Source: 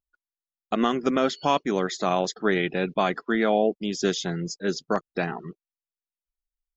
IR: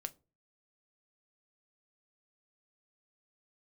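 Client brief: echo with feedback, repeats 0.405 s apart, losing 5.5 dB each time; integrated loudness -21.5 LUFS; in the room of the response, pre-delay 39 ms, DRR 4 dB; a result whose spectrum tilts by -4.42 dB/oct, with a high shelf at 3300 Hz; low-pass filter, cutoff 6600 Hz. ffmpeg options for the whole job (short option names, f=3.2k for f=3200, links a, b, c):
-filter_complex "[0:a]lowpass=6.6k,highshelf=f=3.3k:g=-6,aecho=1:1:405|810|1215|1620|2025|2430|2835:0.531|0.281|0.149|0.079|0.0419|0.0222|0.0118,asplit=2[a][b];[1:a]atrim=start_sample=2205,adelay=39[c];[b][c]afir=irnorm=-1:irlink=0,volume=-1.5dB[d];[a][d]amix=inputs=2:normalize=0,volume=2.5dB"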